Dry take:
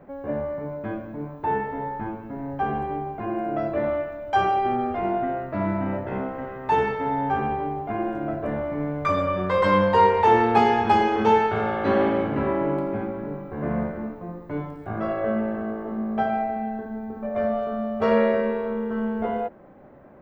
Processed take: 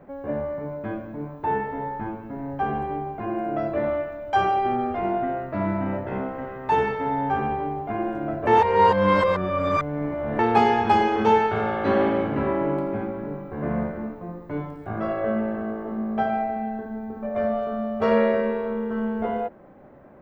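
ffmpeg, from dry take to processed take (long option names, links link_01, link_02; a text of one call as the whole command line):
ffmpeg -i in.wav -filter_complex "[0:a]asplit=3[link_01][link_02][link_03];[link_01]atrim=end=8.472[link_04];[link_02]atrim=start=8.468:end=10.392,asetpts=PTS-STARTPTS,areverse[link_05];[link_03]atrim=start=10.388[link_06];[link_04][link_05]acrossfade=duration=0.004:curve1=hsin:curve2=hsin[link_07];[link_07][link_06]acrossfade=duration=0.004:curve1=hsin:curve2=hsin" out.wav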